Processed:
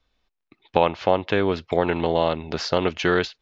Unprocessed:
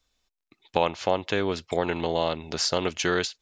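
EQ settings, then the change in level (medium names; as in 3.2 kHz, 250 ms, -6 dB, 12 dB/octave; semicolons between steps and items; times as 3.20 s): distance through air 220 m; +5.5 dB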